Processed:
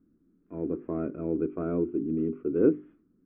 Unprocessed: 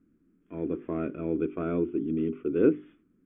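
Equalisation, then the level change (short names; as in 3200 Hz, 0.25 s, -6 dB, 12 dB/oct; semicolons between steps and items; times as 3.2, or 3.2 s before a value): LPF 1200 Hz 12 dB/oct; 0.0 dB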